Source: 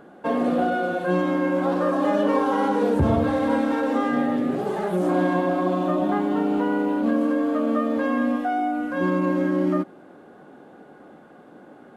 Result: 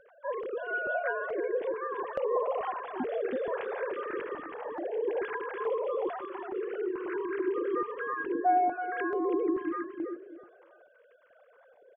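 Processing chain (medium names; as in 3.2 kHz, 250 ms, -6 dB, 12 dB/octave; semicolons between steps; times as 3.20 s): formants replaced by sine waves; feedback delay 326 ms, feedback 22%, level -6 dB; step-sequenced notch 2.3 Hz 280–1600 Hz; trim -7.5 dB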